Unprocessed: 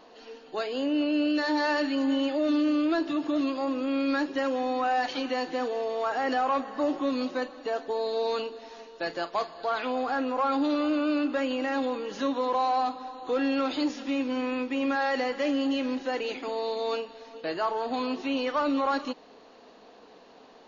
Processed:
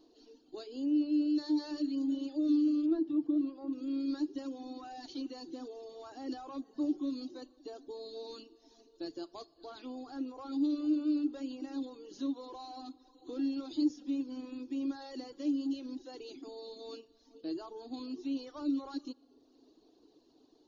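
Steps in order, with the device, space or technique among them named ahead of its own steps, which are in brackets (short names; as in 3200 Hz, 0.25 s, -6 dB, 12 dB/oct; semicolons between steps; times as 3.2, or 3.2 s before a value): reverb removal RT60 0.91 s; compressed reverb return (on a send at -13.5 dB: reverb RT60 1.4 s, pre-delay 58 ms + compressor, threshold -40 dBFS, peak gain reduction 17 dB); 2.86–3.73 on the sum: LPF 2100 Hz 12 dB/oct; EQ curve 130 Hz 0 dB, 200 Hz -12 dB, 320 Hz +8 dB, 500 Hz -12 dB, 970 Hz -15 dB, 2100 Hz -22 dB, 4200 Hz -3 dB; gain -5.5 dB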